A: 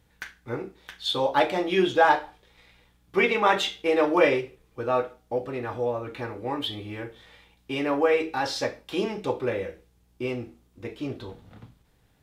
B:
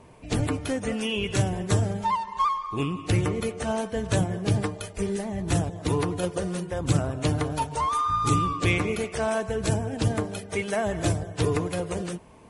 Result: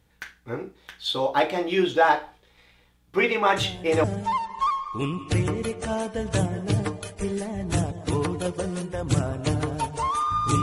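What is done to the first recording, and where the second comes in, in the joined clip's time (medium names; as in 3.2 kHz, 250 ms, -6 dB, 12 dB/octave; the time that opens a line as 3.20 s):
A
3.56 s: add B from 1.34 s 0.48 s -8.5 dB
4.04 s: go over to B from 1.82 s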